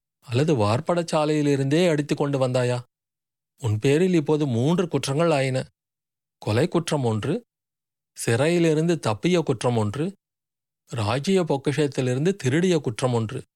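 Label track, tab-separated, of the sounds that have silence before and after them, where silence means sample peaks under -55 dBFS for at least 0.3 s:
3.580000	5.690000	sound
6.410000	7.430000	sound
8.160000	10.150000	sound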